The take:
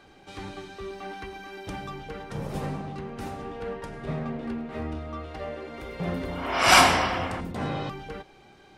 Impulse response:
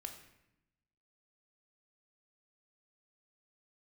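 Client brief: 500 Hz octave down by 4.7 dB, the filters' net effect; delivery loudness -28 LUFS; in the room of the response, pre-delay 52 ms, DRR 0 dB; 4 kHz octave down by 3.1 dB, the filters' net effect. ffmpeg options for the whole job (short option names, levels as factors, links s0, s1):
-filter_complex "[0:a]equalizer=f=500:t=o:g=-6.5,equalizer=f=4000:t=o:g=-4.5,asplit=2[s0][s1];[1:a]atrim=start_sample=2205,adelay=52[s2];[s1][s2]afir=irnorm=-1:irlink=0,volume=1.5[s3];[s0][s3]amix=inputs=2:normalize=0,volume=0.75"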